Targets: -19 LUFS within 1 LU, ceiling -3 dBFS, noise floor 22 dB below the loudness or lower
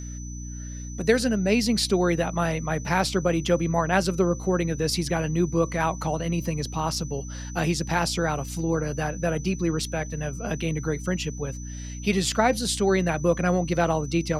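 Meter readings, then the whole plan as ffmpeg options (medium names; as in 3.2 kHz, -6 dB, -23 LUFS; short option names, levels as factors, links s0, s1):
hum 60 Hz; highest harmonic 300 Hz; hum level -33 dBFS; steady tone 6 kHz; tone level -42 dBFS; loudness -25.0 LUFS; peak level -7.0 dBFS; loudness target -19.0 LUFS
-> -af "bandreject=f=60:t=h:w=4,bandreject=f=120:t=h:w=4,bandreject=f=180:t=h:w=4,bandreject=f=240:t=h:w=4,bandreject=f=300:t=h:w=4"
-af "bandreject=f=6000:w=30"
-af "volume=2,alimiter=limit=0.708:level=0:latency=1"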